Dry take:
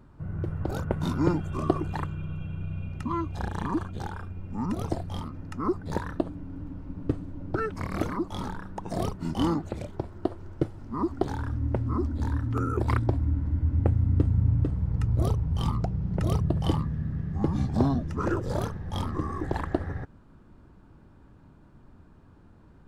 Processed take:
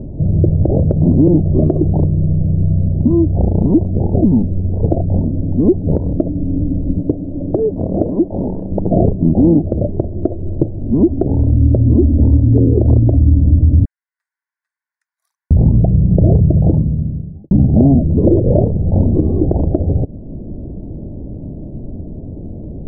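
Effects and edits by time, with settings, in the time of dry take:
4.14–4.83 s: reverse
7.01–8.72 s: bass shelf 240 Hz -11 dB
13.85–15.51 s: steep high-pass 1.4 kHz 72 dB/octave
16.33–17.51 s: studio fade out
whole clip: elliptic low-pass 640 Hz, stop band 50 dB; compression 1.5:1, threshold -50 dBFS; loudness maximiser +28.5 dB; trim -1 dB

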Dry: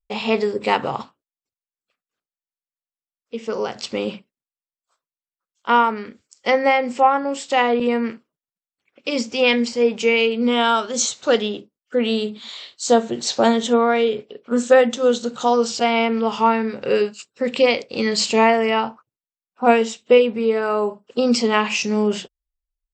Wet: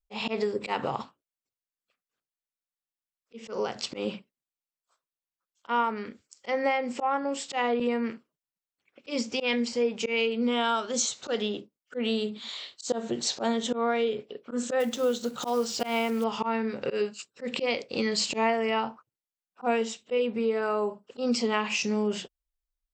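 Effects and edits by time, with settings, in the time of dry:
14.80–16.25 s: block-companded coder 5-bit
whole clip: slow attack 132 ms; compression 2:1, threshold -24 dBFS; trim -3 dB

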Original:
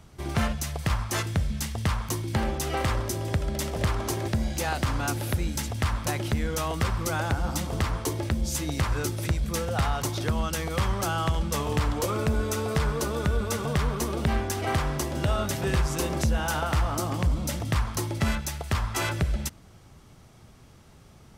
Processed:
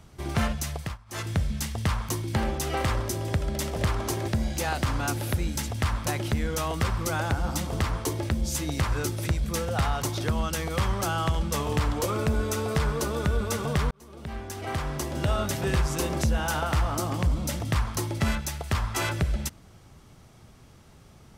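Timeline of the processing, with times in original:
0.73–1.31 s: dip -22.5 dB, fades 0.25 s
13.91–15.31 s: fade in

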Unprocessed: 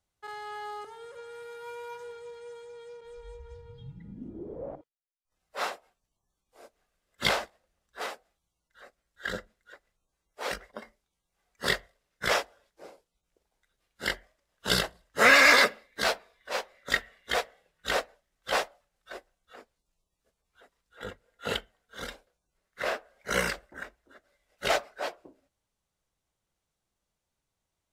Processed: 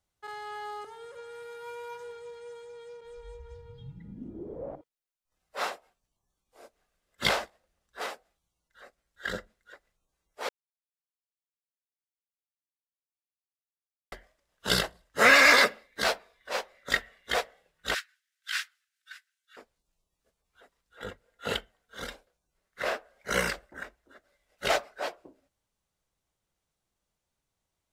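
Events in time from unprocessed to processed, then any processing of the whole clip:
10.49–14.12 s: mute
17.94–19.57 s: elliptic high-pass 1.5 kHz, stop band 70 dB

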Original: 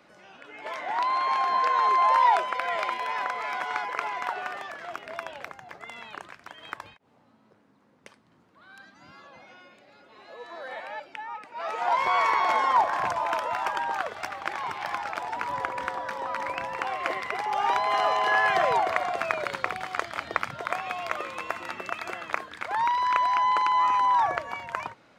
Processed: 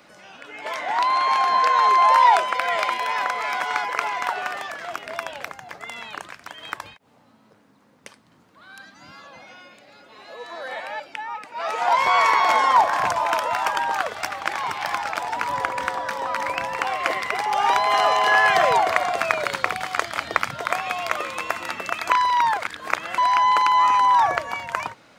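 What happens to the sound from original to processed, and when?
22.10–23.18 s: reverse
whole clip: treble shelf 4.1 kHz +8 dB; band-stop 370 Hz, Q 12; trim +5 dB

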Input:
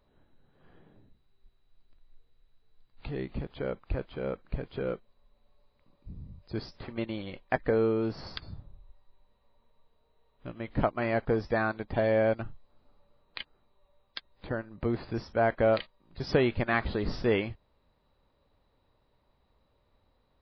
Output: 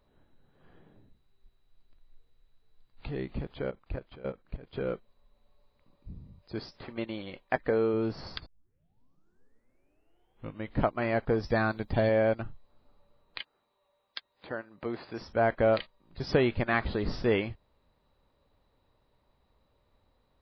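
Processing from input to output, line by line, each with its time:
3.69–4.73 s: level held to a coarse grid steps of 16 dB
6.18–7.94 s: bass shelf 140 Hz -8 dB
8.46 s: tape start 2.27 s
11.43–12.09 s: tone controls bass +5 dB, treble +10 dB
13.39–15.21 s: high-pass 470 Hz 6 dB/octave

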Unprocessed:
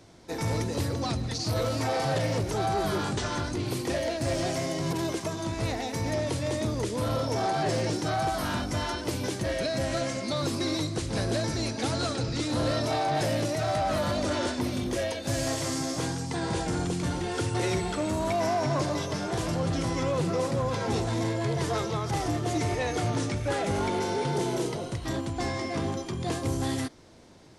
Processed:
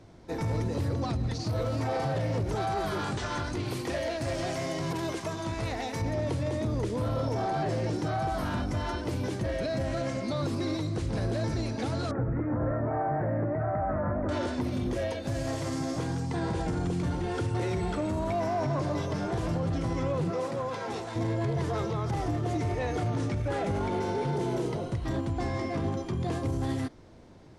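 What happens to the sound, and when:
2.55–6.02 s: tilt shelf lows -4.5 dB, about 700 Hz
12.11–14.29 s: steep low-pass 1.9 kHz 48 dB/octave
20.30–21.15 s: high-pass 360 Hz -> 990 Hz 6 dB/octave
whole clip: bass shelf 110 Hz +6.5 dB; peak limiter -22 dBFS; treble shelf 3 kHz -10.5 dB

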